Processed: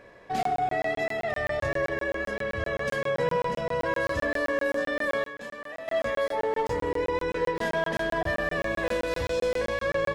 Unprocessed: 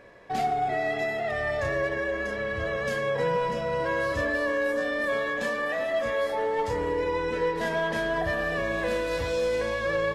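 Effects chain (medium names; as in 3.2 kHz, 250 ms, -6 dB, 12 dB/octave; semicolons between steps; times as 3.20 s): 5.24–5.88 s: feedback comb 140 Hz, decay 0.92 s, harmonics odd, mix 70%; crackling interface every 0.13 s, samples 1024, zero, from 0.43 s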